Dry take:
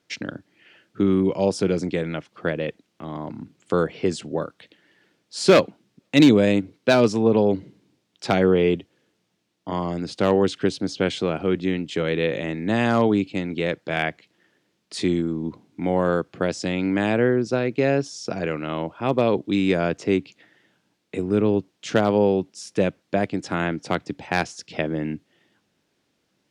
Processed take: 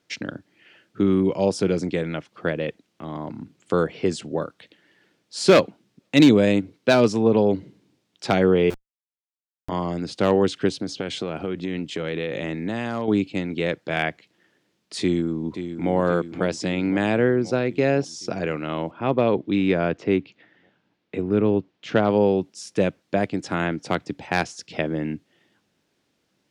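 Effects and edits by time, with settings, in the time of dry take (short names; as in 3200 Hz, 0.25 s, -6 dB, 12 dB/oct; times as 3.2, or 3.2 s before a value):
8.7–9.69 Schmitt trigger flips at -21 dBFS
10.69–13.08 compressor 10:1, threshold -22 dBFS
15.01–15.92 echo throw 0.53 s, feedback 65%, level -9.5 dB
18.91–22.1 LPF 3400 Hz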